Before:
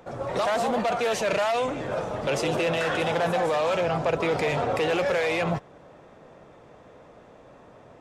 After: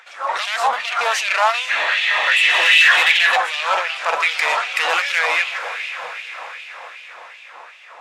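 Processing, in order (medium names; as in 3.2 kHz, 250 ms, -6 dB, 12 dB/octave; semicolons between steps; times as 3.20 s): bass shelf 380 Hz +3.5 dB; 1.88–2.73 s: spectral replace 1.8–6.8 kHz both; 3.96–5.19 s: treble shelf 4 kHz +6.5 dB; echo that smears into a reverb 502 ms, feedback 58%, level -12.5 dB; 1.70–3.36 s: time-frequency box 1.6–4.5 kHz +10 dB; overdrive pedal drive 16 dB, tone 6.6 kHz, clips at -8 dBFS; LFO high-pass sine 2.6 Hz 920–2700 Hz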